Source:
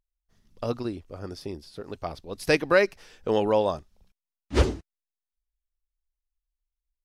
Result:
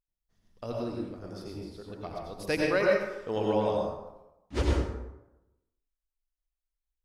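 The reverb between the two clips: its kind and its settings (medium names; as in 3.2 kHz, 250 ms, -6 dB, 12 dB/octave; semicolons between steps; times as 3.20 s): plate-style reverb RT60 0.94 s, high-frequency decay 0.55×, pre-delay 75 ms, DRR -2 dB; trim -8.5 dB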